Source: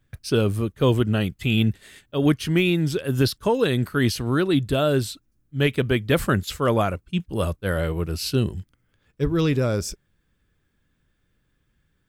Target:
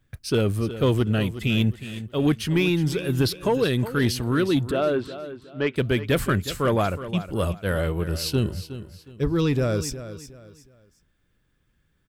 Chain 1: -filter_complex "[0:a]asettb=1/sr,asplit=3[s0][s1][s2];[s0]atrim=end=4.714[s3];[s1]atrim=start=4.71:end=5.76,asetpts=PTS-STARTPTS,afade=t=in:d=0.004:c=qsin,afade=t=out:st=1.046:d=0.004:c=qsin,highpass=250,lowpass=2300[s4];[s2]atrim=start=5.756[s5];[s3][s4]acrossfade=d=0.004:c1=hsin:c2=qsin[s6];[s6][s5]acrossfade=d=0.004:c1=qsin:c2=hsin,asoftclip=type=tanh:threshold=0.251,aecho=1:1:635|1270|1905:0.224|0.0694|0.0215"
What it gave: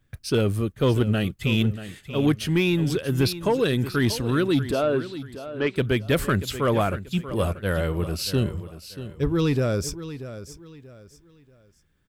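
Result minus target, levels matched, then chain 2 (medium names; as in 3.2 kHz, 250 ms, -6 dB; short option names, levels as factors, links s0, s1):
echo 271 ms late
-filter_complex "[0:a]asettb=1/sr,asplit=3[s0][s1][s2];[s0]atrim=end=4.714[s3];[s1]atrim=start=4.71:end=5.76,asetpts=PTS-STARTPTS,afade=t=in:d=0.004:c=qsin,afade=t=out:st=1.046:d=0.004:c=qsin,highpass=250,lowpass=2300[s4];[s2]atrim=start=5.756[s5];[s3][s4]acrossfade=d=0.004:c1=hsin:c2=qsin[s6];[s6][s5]acrossfade=d=0.004:c1=qsin:c2=hsin,asoftclip=type=tanh:threshold=0.251,aecho=1:1:364|728|1092:0.224|0.0694|0.0215"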